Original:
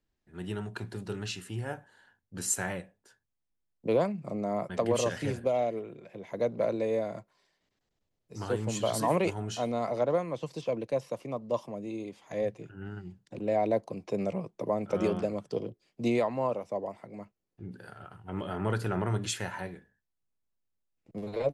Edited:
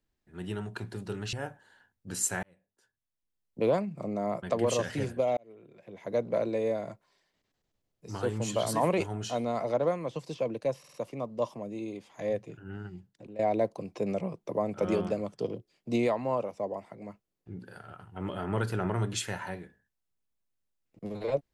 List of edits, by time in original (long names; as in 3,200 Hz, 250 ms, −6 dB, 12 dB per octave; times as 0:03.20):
0:01.33–0:01.60: remove
0:02.70–0:03.87: fade in
0:05.64–0:06.43: fade in
0:11.06: stutter 0.05 s, 4 plays
0:13.02–0:13.51: fade out, to −16 dB